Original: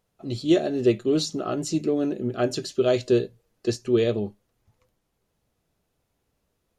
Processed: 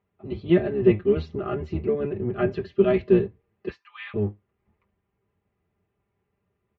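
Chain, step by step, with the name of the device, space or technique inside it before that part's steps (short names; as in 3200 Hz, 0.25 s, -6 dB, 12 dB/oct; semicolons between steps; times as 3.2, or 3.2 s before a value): 3.68–4.14 steep high-pass 880 Hz 72 dB/oct; comb 5 ms, depth 85%; sub-octave bass pedal (octaver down 1 oct, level 0 dB; speaker cabinet 78–2300 Hz, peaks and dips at 150 Hz -6 dB, 250 Hz -8 dB, 590 Hz -8 dB, 880 Hz -4 dB, 1500 Hz -6 dB); dynamic EQ 1800 Hz, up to +4 dB, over -46 dBFS, Q 1.5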